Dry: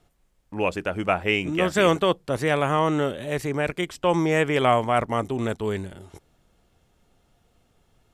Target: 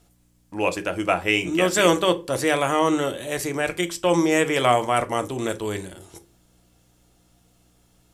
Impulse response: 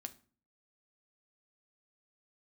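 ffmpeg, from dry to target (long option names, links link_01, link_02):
-filter_complex "[0:a]aeval=exprs='val(0)+0.00158*(sin(2*PI*60*n/s)+sin(2*PI*2*60*n/s)/2+sin(2*PI*3*60*n/s)/3+sin(2*PI*4*60*n/s)/4+sin(2*PI*5*60*n/s)/5)':channel_layout=same,bass=frequency=250:gain=-5,treble=frequency=4000:gain=10[link_01];[1:a]atrim=start_sample=2205,asetrate=61740,aresample=44100[link_02];[link_01][link_02]afir=irnorm=-1:irlink=0,volume=8.5dB"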